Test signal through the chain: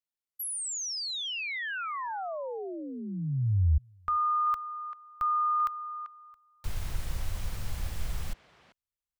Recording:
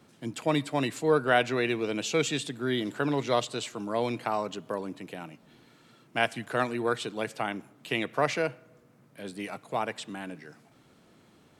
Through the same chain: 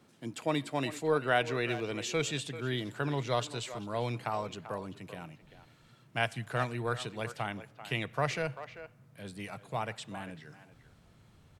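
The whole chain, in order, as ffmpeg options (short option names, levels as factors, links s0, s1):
-filter_complex "[0:a]asubboost=boost=10:cutoff=89,asplit=2[s0][s1];[s1]adelay=390,highpass=300,lowpass=3400,asoftclip=type=hard:threshold=0.119,volume=0.251[s2];[s0][s2]amix=inputs=2:normalize=0,volume=0.631"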